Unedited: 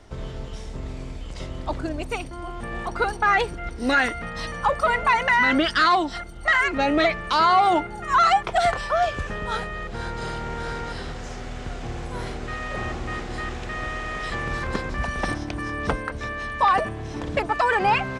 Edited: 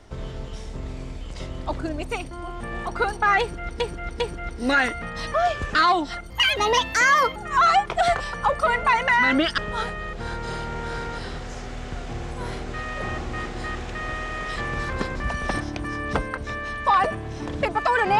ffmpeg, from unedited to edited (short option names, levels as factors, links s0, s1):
-filter_complex "[0:a]asplit=9[s0][s1][s2][s3][s4][s5][s6][s7][s8];[s0]atrim=end=3.802[s9];[s1]atrim=start=3.398:end=3.802[s10];[s2]atrim=start=3.398:end=4.542[s11];[s3]atrim=start=8.908:end=9.322[s12];[s4]atrim=start=5.778:end=6.334[s13];[s5]atrim=start=6.33:end=7.93,asetpts=PTS-STARTPTS,asetrate=66591,aresample=44100,atrim=end_sample=46728,asetpts=PTS-STARTPTS[s14];[s6]atrim=start=7.926:end=8.912[s15];[s7]atrim=start=4.538:end=5.782[s16];[s8]atrim=start=9.318[s17];[s9][s10]acrossfade=d=0.004:c1=hsin:c2=hsin[s18];[s18][s11]acrossfade=d=0.004:c1=hsin:c2=hsin[s19];[s19][s12]acrossfade=d=0.004:c1=hsin:c2=hsin[s20];[s20][s13]acrossfade=d=0.004:c1=hsin:c2=hsin[s21];[s21][s14]acrossfade=d=0.004:c1=hsin:c2=hsin[s22];[s22][s15]acrossfade=d=0.004:c1=hsin:c2=hsin[s23];[s23][s16]acrossfade=d=0.004:c1=hsin:c2=hsin[s24];[s24][s17]acrossfade=d=0.004:c1=hsin:c2=hsin"